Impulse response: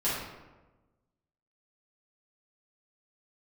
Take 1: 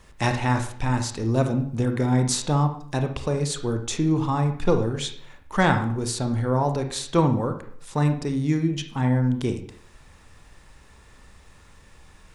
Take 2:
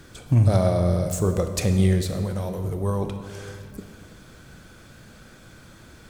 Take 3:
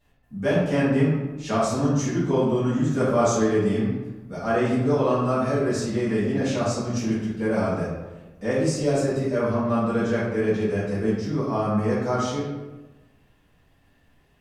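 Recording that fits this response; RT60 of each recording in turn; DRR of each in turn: 3; 0.60, 2.2, 1.2 s; 6.0, 6.5, -11.0 dB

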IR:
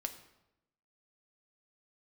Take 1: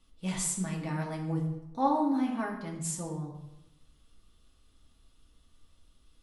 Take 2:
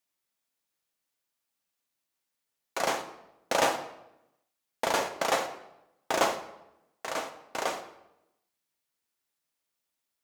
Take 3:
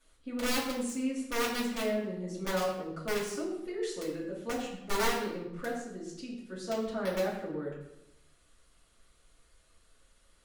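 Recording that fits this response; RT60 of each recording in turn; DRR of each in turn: 2; 0.90, 0.90, 0.90 s; -2.0, 6.0, -8.5 dB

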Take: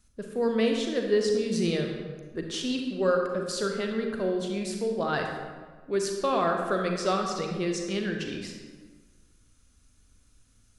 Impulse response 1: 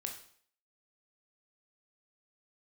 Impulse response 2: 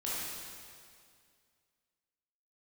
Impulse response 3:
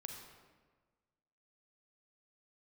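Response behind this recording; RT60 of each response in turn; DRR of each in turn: 3; 0.55, 2.2, 1.4 s; 2.5, -8.5, 2.0 dB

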